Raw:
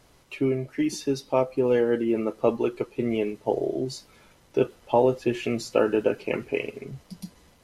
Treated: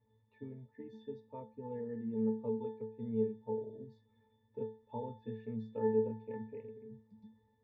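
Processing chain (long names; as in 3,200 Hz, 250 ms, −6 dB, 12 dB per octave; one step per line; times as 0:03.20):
high-frequency loss of the air 97 metres
resonances in every octave A, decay 0.42 s
level +1 dB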